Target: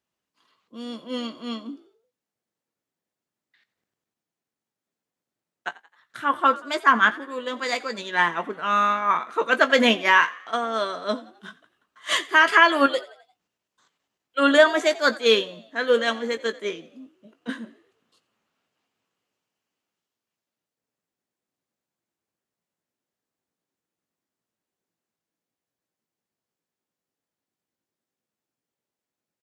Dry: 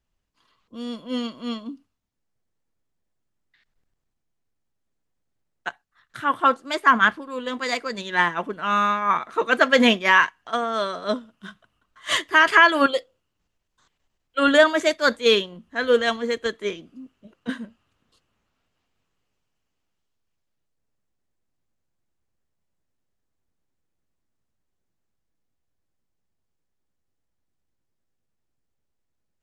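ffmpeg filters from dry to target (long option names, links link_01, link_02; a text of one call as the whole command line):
ffmpeg -i in.wav -filter_complex "[0:a]highpass=200,asplit=2[link_01][link_02];[link_02]adelay=18,volume=-11dB[link_03];[link_01][link_03]amix=inputs=2:normalize=0,asplit=5[link_04][link_05][link_06][link_07][link_08];[link_05]adelay=87,afreqshift=55,volume=-20dB[link_09];[link_06]adelay=174,afreqshift=110,volume=-26.6dB[link_10];[link_07]adelay=261,afreqshift=165,volume=-33.1dB[link_11];[link_08]adelay=348,afreqshift=220,volume=-39.7dB[link_12];[link_04][link_09][link_10][link_11][link_12]amix=inputs=5:normalize=0,volume=-1dB" out.wav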